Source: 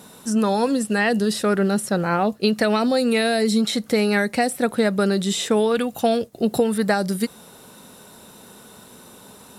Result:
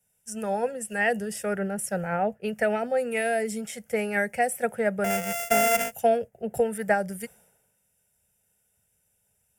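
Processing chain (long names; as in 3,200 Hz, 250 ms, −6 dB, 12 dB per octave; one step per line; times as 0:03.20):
0:05.04–0:05.92: samples sorted by size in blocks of 64 samples
phaser with its sweep stopped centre 1,100 Hz, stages 6
multiband upward and downward expander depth 100%
level −3 dB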